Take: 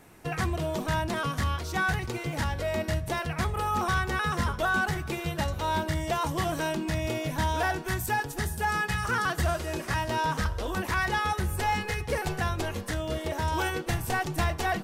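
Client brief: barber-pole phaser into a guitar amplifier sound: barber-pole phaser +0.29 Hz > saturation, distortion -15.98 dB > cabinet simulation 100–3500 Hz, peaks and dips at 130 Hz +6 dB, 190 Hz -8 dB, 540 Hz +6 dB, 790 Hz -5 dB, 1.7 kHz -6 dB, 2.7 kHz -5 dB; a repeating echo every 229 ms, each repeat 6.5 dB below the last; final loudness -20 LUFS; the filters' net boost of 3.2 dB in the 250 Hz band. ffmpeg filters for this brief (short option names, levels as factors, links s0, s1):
-filter_complex "[0:a]equalizer=f=250:t=o:g=7,aecho=1:1:229|458|687|916|1145|1374:0.473|0.222|0.105|0.0491|0.0231|0.0109,asplit=2[s0][s1];[s1]afreqshift=0.29[s2];[s0][s2]amix=inputs=2:normalize=1,asoftclip=threshold=0.0631,highpass=100,equalizer=f=130:t=q:w=4:g=6,equalizer=f=190:t=q:w=4:g=-8,equalizer=f=540:t=q:w=4:g=6,equalizer=f=790:t=q:w=4:g=-5,equalizer=f=1700:t=q:w=4:g=-6,equalizer=f=2700:t=q:w=4:g=-5,lowpass=f=3500:w=0.5412,lowpass=f=3500:w=1.3066,volume=5.01"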